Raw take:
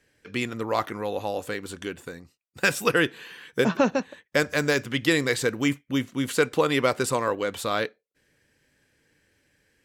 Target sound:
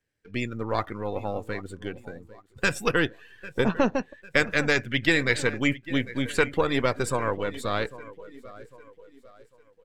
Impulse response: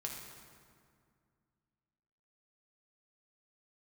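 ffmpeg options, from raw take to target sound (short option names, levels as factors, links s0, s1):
-filter_complex "[0:a]aeval=exprs='if(lt(val(0),0),0.447*val(0),val(0))':c=same,asettb=1/sr,asplit=3[s0][s1][s2];[s0]atrim=end=3.994[s3];[s1]atrim=start=3.99:end=6.46,asetpts=PTS-STARTPTS,afade=t=in:d=0.004:c=qsin,afade=t=out:st=2.466:d=0.004:c=qsin,equalizer=f=2200:t=o:w=1.2:g=6[s4];[s2]atrim=start=6.456[s5];[s3][s4]acrossfade=d=0.004:c1=hsin:c2=qsin[s6];[s6][s5]acrossfade=d=0.004:c1=qsin:c2=hsin,aecho=1:1:799|1598|2397|3196|3995:0.158|0.0856|0.0462|0.025|0.0135,afftdn=nr=14:nf=-39,equalizer=f=76:t=o:w=2:g=6"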